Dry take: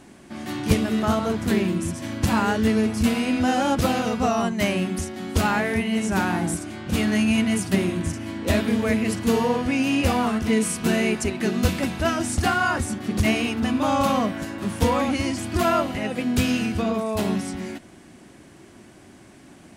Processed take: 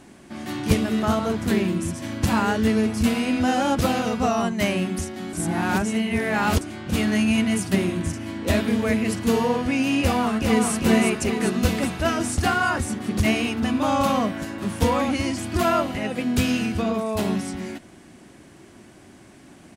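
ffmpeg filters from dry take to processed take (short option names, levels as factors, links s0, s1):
-filter_complex "[0:a]asplit=2[s0][s1];[s1]afade=t=in:st=10.01:d=0.01,afade=t=out:st=10.69:d=0.01,aecho=0:1:400|800|1200|1600|2000|2400|2800|3200|3600|4000:0.668344|0.434424|0.282375|0.183544|0.119304|0.0775473|0.0504058|0.0327637|0.0212964|0.0138427[s2];[s0][s2]amix=inputs=2:normalize=0,asplit=3[s3][s4][s5];[s3]atrim=end=5.332[s6];[s4]atrim=start=5.328:end=6.612,asetpts=PTS-STARTPTS,areverse[s7];[s5]atrim=start=6.608[s8];[s6][s7]acrossfade=d=0.004:c1=hsin:c2=hsin[s9];[s9][s8]acrossfade=d=0.004:c1=hsin:c2=hsin"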